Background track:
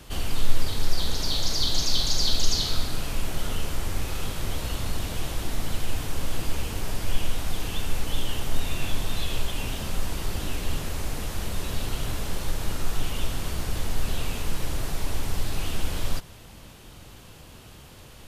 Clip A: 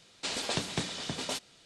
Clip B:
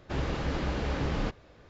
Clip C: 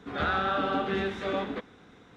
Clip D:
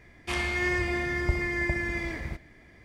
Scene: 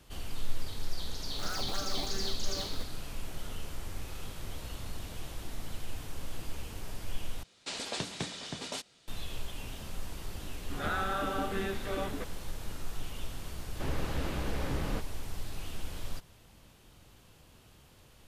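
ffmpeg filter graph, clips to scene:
ffmpeg -i bed.wav -i cue0.wav -i cue1.wav -i cue2.wav -filter_complex "[3:a]asplit=2[link_01][link_02];[0:a]volume=-11.5dB[link_03];[link_01]acrusher=samples=17:mix=1:aa=0.000001:lfo=1:lforange=27.2:lforate=2.9[link_04];[link_03]asplit=2[link_05][link_06];[link_05]atrim=end=7.434[link_07];[1:a]atrim=end=1.65,asetpts=PTS-STARTPTS,volume=-4dB[link_08];[link_06]atrim=start=9.076[link_09];[link_04]atrim=end=2.16,asetpts=PTS-STARTPTS,volume=-12.5dB,afade=type=in:duration=0.004:curve=hsin,afade=type=out:start_time=2.156:duration=0.004:curve=hsin,adelay=1230[link_10];[link_02]atrim=end=2.16,asetpts=PTS-STARTPTS,volume=-5.5dB,afade=type=in:duration=0.004:curve=hsin,afade=type=out:start_time=2.156:duration=0.004:curve=hsin,adelay=10640[link_11];[2:a]atrim=end=1.69,asetpts=PTS-STARTPTS,volume=-4.5dB,afade=type=in:duration=0.004:curve=hsin,afade=type=out:start_time=1.686:duration=0.004:curve=hsin,adelay=13700[link_12];[link_07][link_08]acrossfade=duration=0.004:curve1=hsin:curve2=hsin[link_13];[link_13][link_09]acrossfade=duration=0.004:curve1=hsin:curve2=hsin[link_14];[link_14][link_10][link_11][link_12]amix=inputs=4:normalize=0" out.wav

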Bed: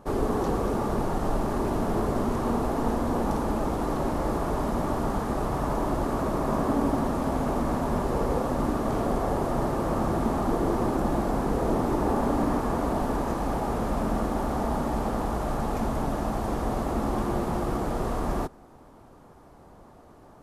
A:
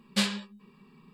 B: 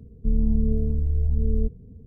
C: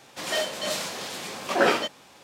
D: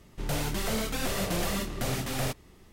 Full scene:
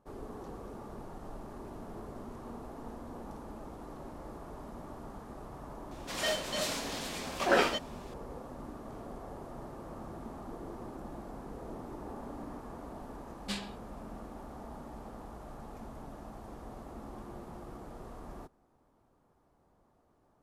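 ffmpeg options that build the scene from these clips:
ffmpeg -i bed.wav -i cue0.wav -i cue1.wav -i cue2.wav -filter_complex "[0:a]volume=-18.5dB[link_01];[3:a]atrim=end=2.23,asetpts=PTS-STARTPTS,volume=-5dB,afade=type=in:duration=0.004:curve=hsin,afade=type=out:start_time=2.226:duration=0.004:curve=hsin,adelay=5910[link_02];[1:a]atrim=end=1.13,asetpts=PTS-STARTPTS,volume=-11.5dB,afade=type=in:duration=0.004:curve=hsin,afade=type=out:start_time=1.126:duration=0.004:curve=hsin,adelay=587412S[link_03];[link_01][link_02][link_03]amix=inputs=3:normalize=0" out.wav

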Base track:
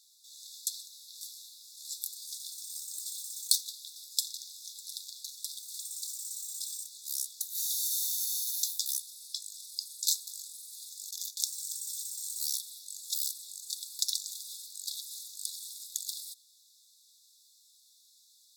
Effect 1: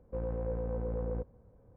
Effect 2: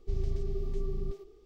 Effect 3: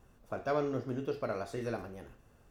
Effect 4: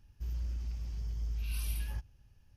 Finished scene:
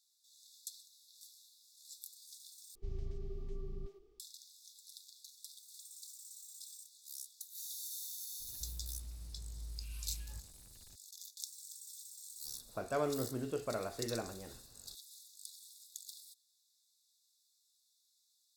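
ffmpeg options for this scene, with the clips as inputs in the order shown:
ffmpeg -i bed.wav -i cue0.wav -i cue1.wav -i cue2.wav -i cue3.wav -filter_complex "[0:a]volume=-13dB[link_01];[2:a]equalizer=frequency=520:width=4.6:gain=-4.5[link_02];[4:a]aeval=exprs='val(0)+0.5*0.00501*sgn(val(0))':channel_layout=same[link_03];[link_01]asplit=2[link_04][link_05];[link_04]atrim=end=2.754[link_06];[link_02]atrim=end=1.45,asetpts=PTS-STARTPTS,volume=-10dB[link_07];[link_05]atrim=start=4.196[link_08];[link_03]atrim=end=2.56,asetpts=PTS-STARTPTS,volume=-11dB,afade=type=in:duration=0.004:curve=hsin,afade=type=out:start_time=2.556:duration=0.004:curve=hsin,adelay=8400[link_09];[3:a]atrim=end=2.5,asetpts=PTS-STARTPTS,volume=-3dB,afade=type=in:duration=0.004:curve=hsin,afade=type=out:start_time=2.496:duration=0.004:curve=hsin,adelay=12450[link_10];[link_06][link_07]acrossfade=duration=0.004:curve1=hsin:curve2=hsin[link_11];[link_11][link_08]acrossfade=duration=0.004:curve1=hsin:curve2=hsin[link_12];[link_12][link_09][link_10]amix=inputs=3:normalize=0" out.wav

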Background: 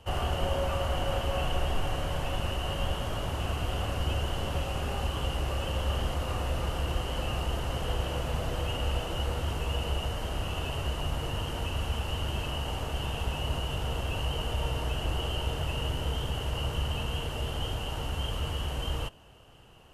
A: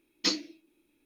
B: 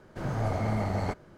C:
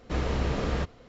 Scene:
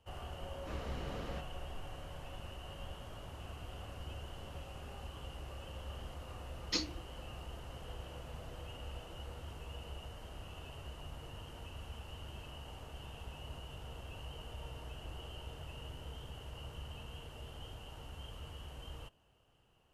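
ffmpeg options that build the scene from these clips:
ffmpeg -i bed.wav -i cue0.wav -i cue1.wav -i cue2.wav -filter_complex "[0:a]volume=-16dB[link_01];[3:a]atrim=end=1.08,asetpts=PTS-STARTPTS,volume=-15dB,afade=type=in:duration=0.004:curve=hsin,afade=type=out:start_time=1.076:duration=0.004:curve=hsin,adelay=560[link_02];[1:a]atrim=end=1.05,asetpts=PTS-STARTPTS,volume=-7.5dB,afade=type=in:duration=0.004:curve=hsin,afade=type=out:start_time=1.046:duration=0.004:curve=hsin,adelay=6480[link_03];[link_01][link_02][link_03]amix=inputs=3:normalize=0" out.wav

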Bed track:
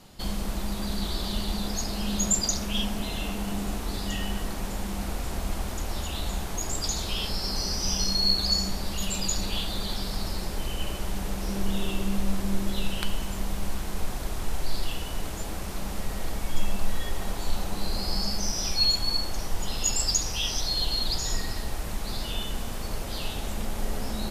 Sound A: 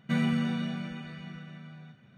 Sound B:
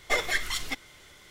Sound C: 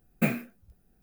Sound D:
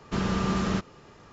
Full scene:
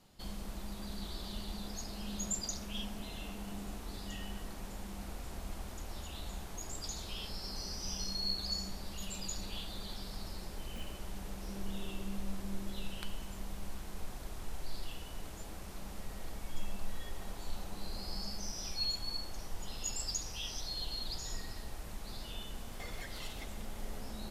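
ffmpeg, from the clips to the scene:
ffmpeg -i bed.wav -i cue0.wav -i cue1.wav -i cue2.wav -filter_complex "[0:a]volume=-12.5dB[link_01];[3:a]acompressor=threshold=-32dB:ratio=6:attack=0.18:release=561:knee=1:detection=rms[link_02];[2:a]acompressor=threshold=-35dB:ratio=6:attack=3.2:release=140:knee=1:detection=peak[link_03];[link_02]atrim=end=1.02,asetpts=PTS-STARTPTS,volume=-12.5dB,afade=type=in:duration=0.004:curve=hsin,afade=type=out:start_time=1.016:duration=0.004:curve=hsin,adelay=10540[link_04];[link_03]atrim=end=1.3,asetpts=PTS-STARTPTS,volume=-9.5dB,afade=type=in:duration=0.004:curve=hsin,afade=type=out:start_time=1.296:duration=0.004:curve=hsin,adelay=22700[link_05];[link_01][link_04][link_05]amix=inputs=3:normalize=0" out.wav

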